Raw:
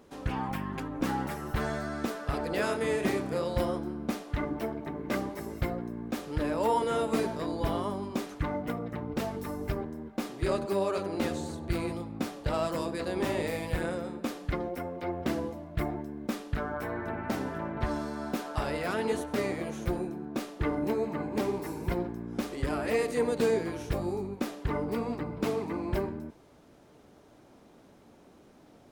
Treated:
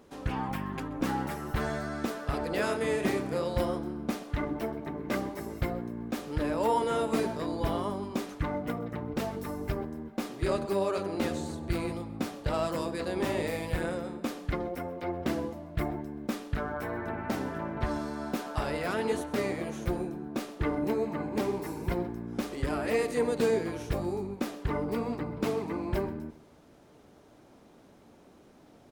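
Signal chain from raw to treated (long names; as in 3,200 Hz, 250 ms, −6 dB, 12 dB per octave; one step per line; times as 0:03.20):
repeating echo 129 ms, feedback 47%, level −21.5 dB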